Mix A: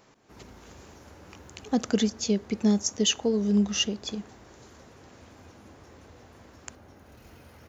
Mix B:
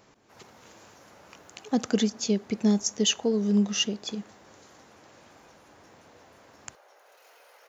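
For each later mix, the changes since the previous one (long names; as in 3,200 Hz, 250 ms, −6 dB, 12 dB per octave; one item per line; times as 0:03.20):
background: add Butterworth high-pass 480 Hz 36 dB per octave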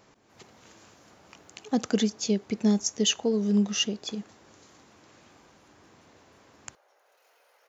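background −8.0 dB
reverb: off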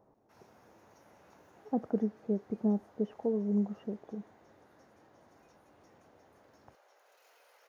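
speech: add transistor ladder low-pass 1,000 Hz, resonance 30%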